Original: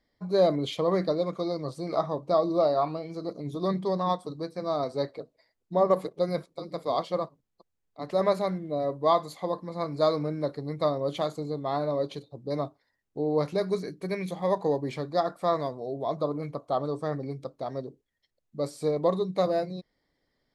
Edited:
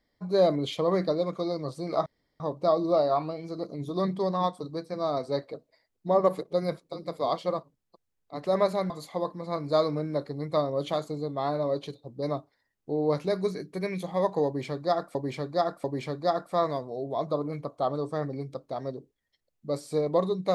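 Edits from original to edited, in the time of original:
2.06 insert room tone 0.34 s
8.56–9.18 cut
14.74–15.43 loop, 3 plays

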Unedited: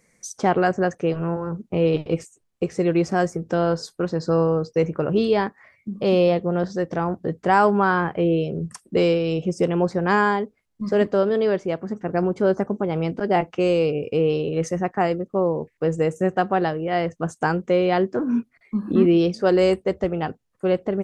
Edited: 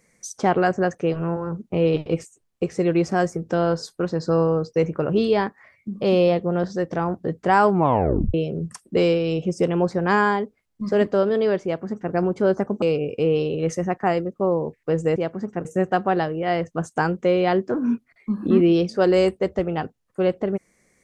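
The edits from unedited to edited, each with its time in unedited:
7.7 tape stop 0.64 s
11.64–12.13 copy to 16.1
12.82–13.76 cut

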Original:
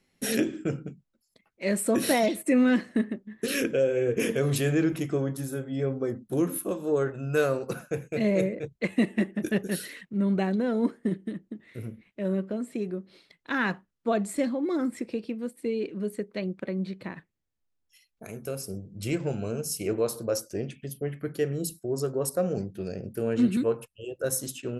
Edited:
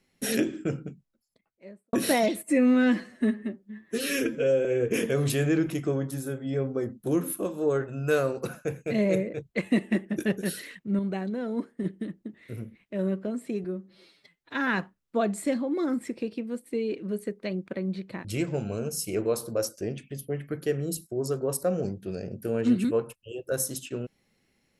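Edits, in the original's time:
0.87–1.93 studio fade out
2.43–3.91 stretch 1.5×
10.25–11.1 gain -5 dB
12.9–13.59 stretch 1.5×
17.16–18.97 cut

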